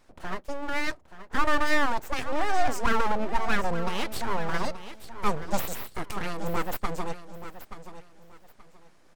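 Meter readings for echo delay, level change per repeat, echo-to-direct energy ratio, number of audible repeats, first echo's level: 0.878 s, -12.0 dB, -12.0 dB, 2, -12.5 dB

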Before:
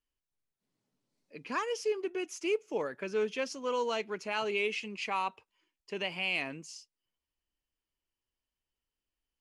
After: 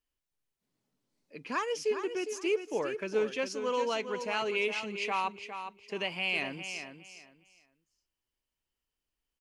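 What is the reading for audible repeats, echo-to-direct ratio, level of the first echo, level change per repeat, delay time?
3, -9.0 dB, -9.0 dB, -13.0 dB, 0.408 s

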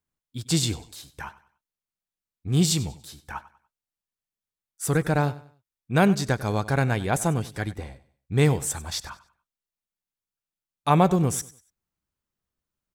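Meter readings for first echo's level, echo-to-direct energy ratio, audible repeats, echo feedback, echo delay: -18.0 dB, -17.5 dB, 2, 32%, 96 ms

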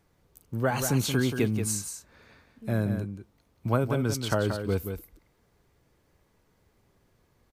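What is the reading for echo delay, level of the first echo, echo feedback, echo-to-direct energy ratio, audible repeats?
0.179 s, -7.5 dB, no steady repeat, -7.5 dB, 1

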